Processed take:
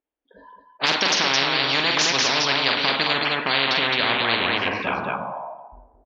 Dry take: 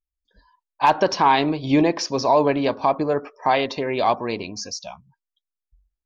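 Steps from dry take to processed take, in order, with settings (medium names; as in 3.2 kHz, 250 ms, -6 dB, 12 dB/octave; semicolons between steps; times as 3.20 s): level-controlled noise filter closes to 530 Hz, open at -18 dBFS; FFT filter 140 Hz 0 dB, 250 Hz +13 dB, 3.2 kHz +7 dB, 4.8 kHz -16 dB, 8.1 kHz -24 dB; band-pass sweep 4.8 kHz -> 620 Hz, 2.97–5.46 s; in parallel at -2 dB: gain riding 0.5 s; on the sum: peaking EQ 1.2 kHz -6 dB 0.29 oct; on a send: loudspeakers at several distances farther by 15 m -7 dB, 74 m -8 dB; on the sum: plate-style reverb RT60 0.96 s, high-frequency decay 0.8×, DRR 14 dB; spectrum-flattening compressor 10:1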